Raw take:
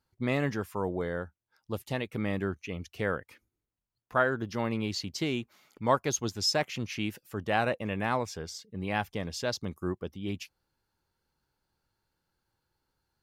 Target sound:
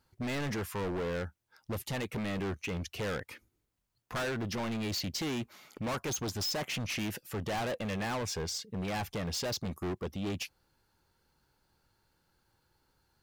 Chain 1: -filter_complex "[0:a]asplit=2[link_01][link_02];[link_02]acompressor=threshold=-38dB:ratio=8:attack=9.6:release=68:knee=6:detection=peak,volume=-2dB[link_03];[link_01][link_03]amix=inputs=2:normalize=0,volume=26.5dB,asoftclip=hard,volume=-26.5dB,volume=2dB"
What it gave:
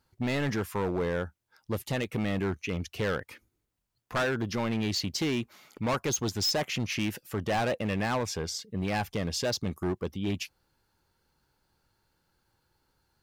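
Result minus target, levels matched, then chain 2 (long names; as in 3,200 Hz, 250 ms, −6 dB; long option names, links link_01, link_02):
gain into a clipping stage and back: distortion −5 dB
-filter_complex "[0:a]asplit=2[link_01][link_02];[link_02]acompressor=threshold=-38dB:ratio=8:attack=9.6:release=68:knee=6:detection=peak,volume=-2dB[link_03];[link_01][link_03]amix=inputs=2:normalize=0,volume=34dB,asoftclip=hard,volume=-34dB,volume=2dB"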